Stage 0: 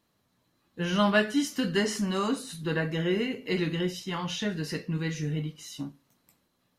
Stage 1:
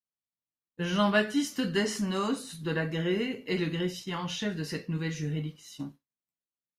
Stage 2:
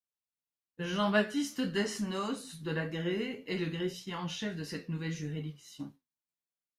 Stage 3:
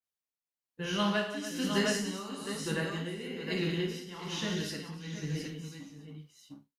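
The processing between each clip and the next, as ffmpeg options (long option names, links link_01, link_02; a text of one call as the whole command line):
ffmpeg -i in.wav -af "agate=range=-33dB:threshold=-39dB:ratio=3:detection=peak,volume=-1.5dB" out.wav
ffmpeg -i in.wav -af "flanger=delay=9.2:depth=5.2:regen=61:speed=1.7:shape=triangular" out.wav
ffmpeg -i in.wav -af "aecho=1:1:54|108|180|287|710|756:0.501|0.355|0.447|0.335|0.473|0.133,tremolo=f=1.1:d=0.66,adynamicequalizer=threshold=0.00355:dfrequency=2700:dqfactor=0.7:tfrequency=2700:tqfactor=0.7:attack=5:release=100:ratio=0.375:range=2.5:mode=boostabove:tftype=highshelf" out.wav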